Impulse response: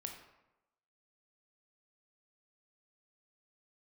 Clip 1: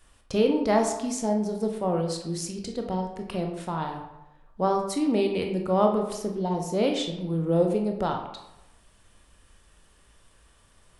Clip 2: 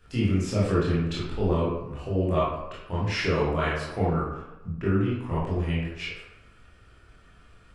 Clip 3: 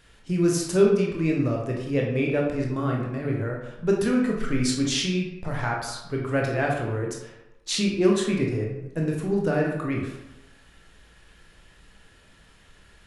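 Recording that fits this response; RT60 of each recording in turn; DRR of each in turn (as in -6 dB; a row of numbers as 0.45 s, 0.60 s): 1; 0.95 s, 0.95 s, 0.95 s; 2.5 dB, -8.5 dB, -1.5 dB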